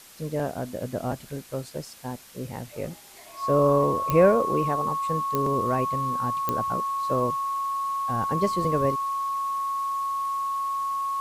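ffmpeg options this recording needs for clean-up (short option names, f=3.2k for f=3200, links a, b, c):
-af "adeclick=t=4,bandreject=f=1.1k:w=30,afwtdn=0.004"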